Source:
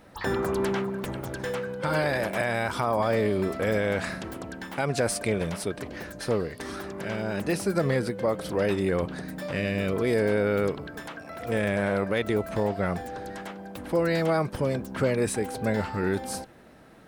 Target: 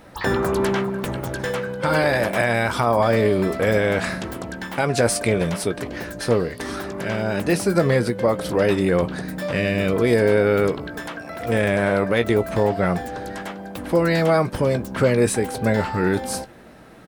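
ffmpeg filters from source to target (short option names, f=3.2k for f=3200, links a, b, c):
-filter_complex "[0:a]asplit=2[a][b];[b]adelay=17,volume=-11.5dB[c];[a][c]amix=inputs=2:normalize=0,volume=6.5dB"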